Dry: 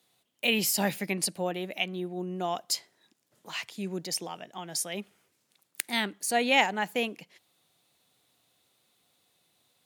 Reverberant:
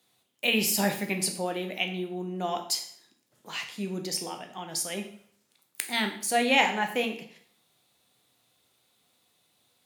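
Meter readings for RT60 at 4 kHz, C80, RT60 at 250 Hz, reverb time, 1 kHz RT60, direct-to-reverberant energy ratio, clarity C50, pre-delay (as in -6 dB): 0.55 s, 13.0 dB, 0.55 s, 0.55 s, 0.55 s, 4.0 dB, 9.5 dB, 6 ms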